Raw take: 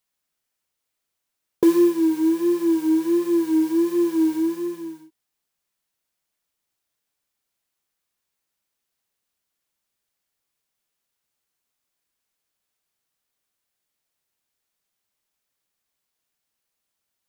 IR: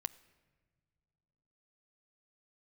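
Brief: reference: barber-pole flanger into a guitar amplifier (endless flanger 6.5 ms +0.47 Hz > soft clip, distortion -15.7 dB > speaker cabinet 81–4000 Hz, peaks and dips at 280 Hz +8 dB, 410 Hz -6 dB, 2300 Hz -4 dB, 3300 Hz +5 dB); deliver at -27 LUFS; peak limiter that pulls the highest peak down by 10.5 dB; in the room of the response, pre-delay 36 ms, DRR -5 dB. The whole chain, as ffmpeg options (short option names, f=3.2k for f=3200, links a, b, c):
-filter_complex "[0:a]alimiter=limit=-17.5dB:level=0:latency=1,asplit=2[a][b];[1:a]atrim=start_sample=2205,adelay=36[c];[b][c]afir=irnorm=-1:irlink=0,volume=6.5dB[d];[a][d]amix=inputs=2:normalize=0,asplit=2[e][f];[f]adelay=6.5,afreqshift=0.47[g];[e][g]amix=inputs=2:normalize=1,asoftclip=threshold=-15.5dB,highpass=81,equalizer=f=280:t=q:w=4:g=8,equalizer=f=410:t=q:w=4:g=-6,equalizer=f=2.3k:t=q:w=4:g=-4,equalizer=f=3.3k:t=q:w=4:g=5,lowpass=f=4k:w=0.5412,lowpass=f=4k:w=1.3066,volume=-4.5dB"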